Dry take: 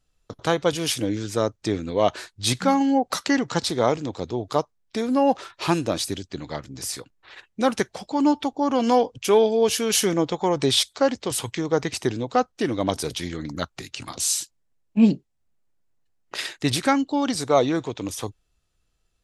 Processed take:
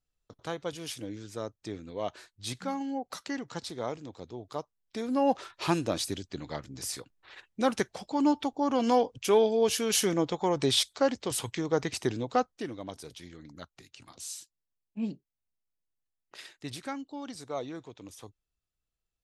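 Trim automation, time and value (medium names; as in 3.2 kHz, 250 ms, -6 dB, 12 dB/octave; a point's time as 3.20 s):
4.56 s -14 dB
5.31 s -5.5 dB
12.37 s -5.5 dB
12.84 s -17 dB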